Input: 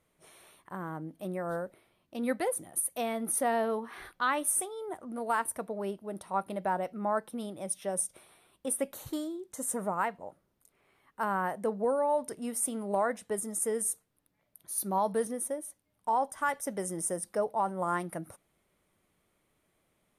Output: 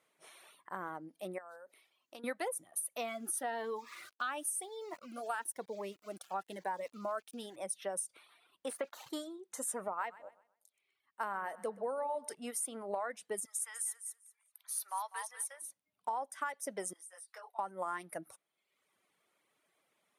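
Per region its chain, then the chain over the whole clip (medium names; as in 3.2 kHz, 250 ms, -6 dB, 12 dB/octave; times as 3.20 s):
1.38–2.24 s: tone controls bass -8 dB, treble +4 dB + compression 16:1, threshold -43 dBFS
2.97–7.56 s: small samples zeroed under -48.5 dBFS + Shepard-style phaser rising 1 Hz
8.70–9.10 s: overdrive pedal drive 15 dB, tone 1.1 kHz, clips at -18.5 dBFS + bass shelf 110 Hz -10 dB + small samples zeroed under -50 dBFS
9.88–12.35 s: feedback delay 126 ms, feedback 39%, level -11.5 dB + three bands expanded up and down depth 40%
13.45–15.62 s: high-pass 990 Hz 24 dB/octave + feedback delay 197 ms, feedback 25%, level -8 dB
16.93–17.59 s: high-pass 1.3 kHz + compression 12:1, threshold -40 dBFS + detune thickener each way 28 cents
whole clip: reverb removal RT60 0.89 s; frequency weighting A; compression 6:1, threshold -35 dBFS; trim +1 dB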